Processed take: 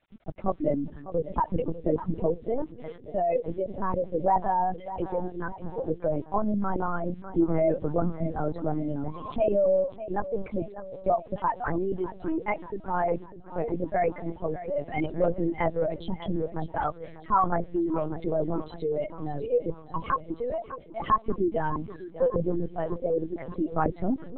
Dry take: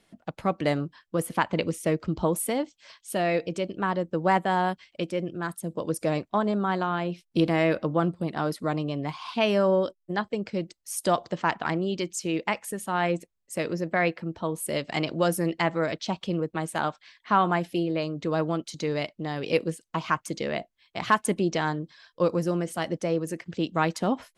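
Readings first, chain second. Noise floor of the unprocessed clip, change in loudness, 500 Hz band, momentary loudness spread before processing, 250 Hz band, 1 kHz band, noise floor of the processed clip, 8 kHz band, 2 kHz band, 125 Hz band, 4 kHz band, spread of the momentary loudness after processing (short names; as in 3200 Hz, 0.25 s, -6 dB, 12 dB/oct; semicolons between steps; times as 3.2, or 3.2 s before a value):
-75 dBFS, -1.5 dB, 0.0 dB, 8 LU, -2.0 dB, -0.5 dB, -47 dBFS, under -40 dB, -9.5 dB, -3.0 dB, under -15 dB, 9 LU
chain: spectral contrast raised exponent 2.3; LPF 2600 Hz 6 dB/oct; bit-crush 10-bit; on a send: split-band echo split 300 Hz, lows 0.239 s, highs 0.599 s, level -13.5 dB; on the sum: LPC vocoder at 8 kHz pitch kept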